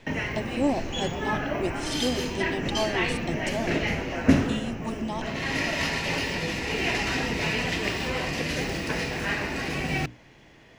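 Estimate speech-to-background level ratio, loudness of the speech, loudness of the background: −4.5 dB, −32.5 LKFS, −28.0 LKFS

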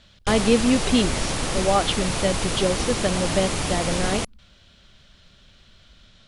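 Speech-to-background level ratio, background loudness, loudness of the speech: 2.0 dB, −26.0 LKFS, −24.0 LKFS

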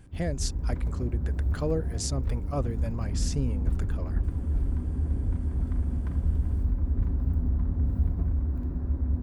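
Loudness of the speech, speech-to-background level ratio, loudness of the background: −34.5 LKFS, −4.5 dB, −30.0 LKFS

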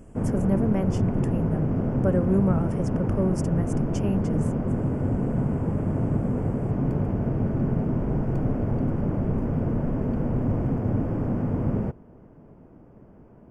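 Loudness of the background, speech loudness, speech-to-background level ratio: −26.0 LKFS, −28.5 LKFS, −2.5 dB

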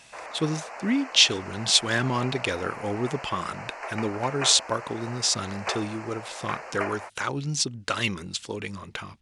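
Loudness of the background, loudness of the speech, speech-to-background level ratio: −37.5 LKFS, −26.0 LKFS, 11.5 dB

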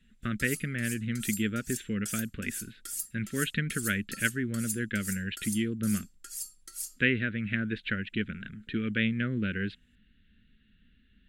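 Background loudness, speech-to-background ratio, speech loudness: −38.5 LKFS, 6.5 dB, −32.0 LKFS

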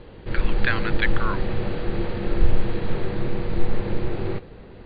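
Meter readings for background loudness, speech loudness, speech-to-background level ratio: −28.5 LKFS, −29.0 LKFS, −0.5 dB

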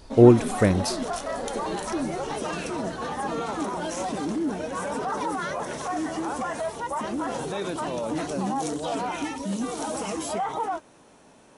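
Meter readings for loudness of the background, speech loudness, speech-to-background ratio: −30.0 LKFS, −19.5 LKFS, 10.5 dB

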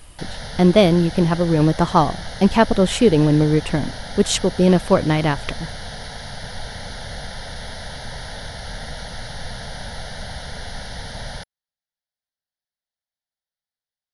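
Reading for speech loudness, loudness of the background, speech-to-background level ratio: −17.5 LKFS, −33.0 LKFS, 15.5 dB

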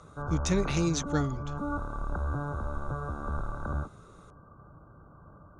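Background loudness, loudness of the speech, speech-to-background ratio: −35.5 LKFS, −30.5 LKFS, 5.0 dB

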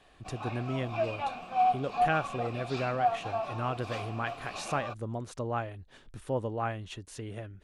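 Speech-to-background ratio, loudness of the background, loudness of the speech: −1.5 dB, −34.0 LKFS, −35.5 LKFS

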